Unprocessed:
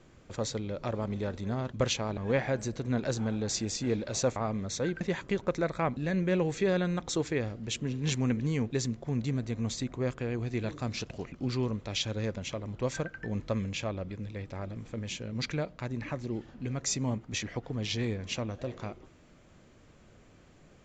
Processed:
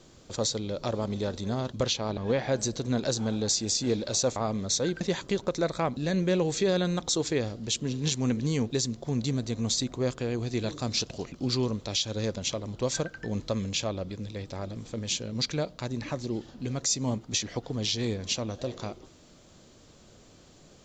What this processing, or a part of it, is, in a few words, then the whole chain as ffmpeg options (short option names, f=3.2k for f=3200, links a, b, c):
over-bright horn tweeter: -filter_complex "[0:a]asettb=1/sr,asplit=3[a][b][c];[a]atrim=end=1.834[d];[b]atrim=start=1.83:end=2.52,asetpts=PTS-STARTPTS,afade=t=in:d=0.004:c=qsin,afade=t=out:st=0.686:d=0.004:c=qsin,lowpass=5.1k[e];[c]atrim=start=2.516[f];[d][e]acrossfade=d=0.004:c1=hsin:c2=qsin[g];[g][f]acrossfade=d=0.004:c1=qsin:c2=hsin,equalizer=f=570:w=0.34:g=4,highshelf=f=3k:t=q:w=1.5:g=9.5,alimiter=limit=-16.5dB:level=0:latency=1:release=153"